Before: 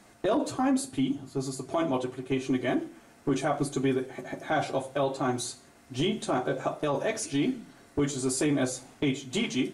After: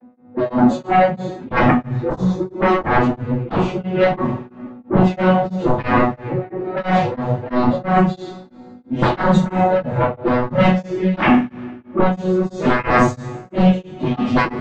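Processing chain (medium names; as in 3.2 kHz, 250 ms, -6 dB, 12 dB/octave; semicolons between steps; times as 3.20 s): vocoder on a broken chord bare fifth, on B2, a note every 467 ms; level-controlled noise filter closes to 890 Hz, open at -22 dBFS; bass shelf 260 Hz +8.5 dB; level rider gain up to 9 dB; plain phase-vocoder stretch 1.5×; touch-sensitive flanger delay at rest 4 ms, full sweep at -12.5 dBFS; sine folder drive 18 dB, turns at -5.5 dBFS; two-slope reverb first 0.43 s, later 1.7 s, from -19 dB, DRR -3 dB; tremolo of two beating tones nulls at 3 Hz; trim -8 dB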